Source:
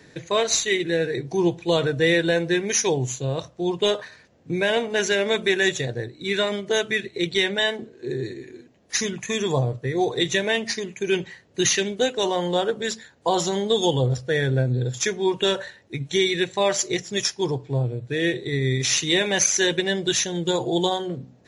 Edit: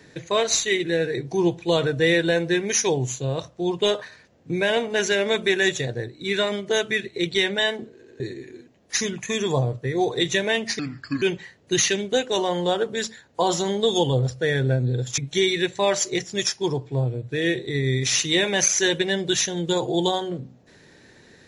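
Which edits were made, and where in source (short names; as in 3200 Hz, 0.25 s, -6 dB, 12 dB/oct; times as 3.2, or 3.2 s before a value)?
7.93 stutter in place 0.09 s, 3 plays
10.79–11.09 speed 70%
15.05–15.96 cut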